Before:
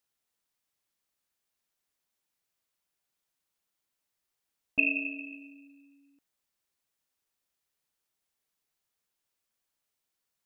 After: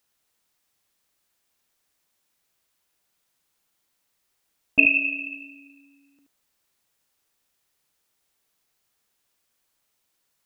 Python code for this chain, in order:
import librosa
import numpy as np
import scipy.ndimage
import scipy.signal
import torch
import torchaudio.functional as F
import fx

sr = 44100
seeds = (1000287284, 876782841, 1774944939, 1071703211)

y = x + 10.0 ** (-6.0 / 20.0) * np.pad(x, (int(77 * sr / 1000.0), 0))[:len(x)]
y = y * librosa.db_to_amplitude(9.0)